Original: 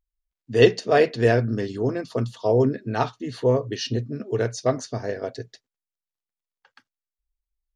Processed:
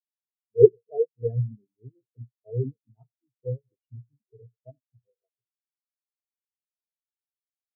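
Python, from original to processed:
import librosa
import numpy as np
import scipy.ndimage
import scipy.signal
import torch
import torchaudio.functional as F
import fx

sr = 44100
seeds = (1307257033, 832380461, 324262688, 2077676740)

y = fx.reverse_delay(x, sr, ms=139, wet_db=-12.0)
y = fx.dynamic_eq(y, sr, hz=150.0, q=0.84, threshold_db=-35.0, ratio=4.0, max_db=7)
y = fx.spectral_expand(y, sr, expansion=4.0)
y = y * 10.0 ** (-1.5 / 20.0)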